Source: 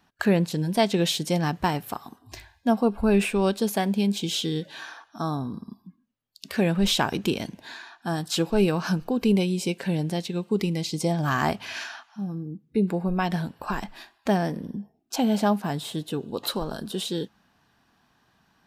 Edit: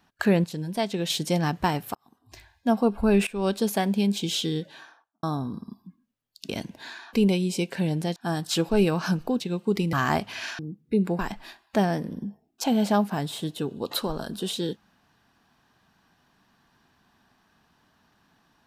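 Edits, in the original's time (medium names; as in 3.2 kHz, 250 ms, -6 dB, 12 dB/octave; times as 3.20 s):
0.44–1.10 s: gain -5.5 dB
1.95–2.77 s: fade in
3.27–3.53 s: fade in, from -19 dB
4.47–5.23 s: studio fade out
6.49–7.33 s: delete
9.21–10.24 s: move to 7.97 s
10.77–11.26 s: delete
11.92–12.42 s: delete
13.02–13.71 s: delete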